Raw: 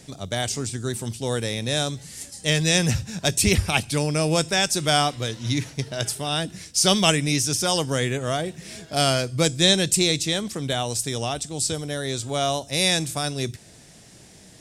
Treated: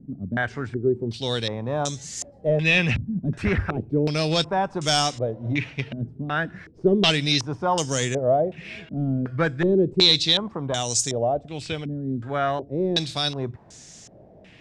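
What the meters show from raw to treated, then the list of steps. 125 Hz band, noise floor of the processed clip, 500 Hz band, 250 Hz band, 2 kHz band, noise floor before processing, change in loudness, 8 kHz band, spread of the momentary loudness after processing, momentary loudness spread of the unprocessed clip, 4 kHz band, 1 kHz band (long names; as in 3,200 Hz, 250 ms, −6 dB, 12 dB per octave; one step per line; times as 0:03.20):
−1.0 dB, −49 dBFS, +1.5 dB, +0.5 dB, 0.0 dB, −49 dBFS, −0.5 dB, −7.0 dB, 11 LU, 10 LU, −1.0 dB, 0.0 dB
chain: hard clipping −14.5 dBFS, distortion −14 dB
low-pass on a step sequencer 2.7 Hz 240–6,600 Hz
level −1.5 dB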